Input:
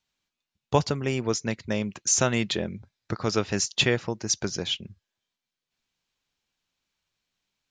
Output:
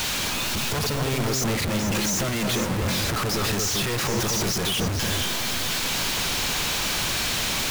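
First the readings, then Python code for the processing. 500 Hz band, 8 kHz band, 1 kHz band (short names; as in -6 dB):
+0.5 dB, +4.0 dB, +5.5 dB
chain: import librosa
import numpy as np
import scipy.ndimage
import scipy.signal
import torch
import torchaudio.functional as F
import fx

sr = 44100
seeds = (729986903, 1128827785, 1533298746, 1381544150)

y = np.sign(x) * np.sqrt(np.mean(np.square(x)))
y = fx.echo_alternate(y, sr, ms=228, hz=1500.0, feedback_pct=53, wet_db=-2.5)
y = y * 10.0 ** (4.0 / 20.0)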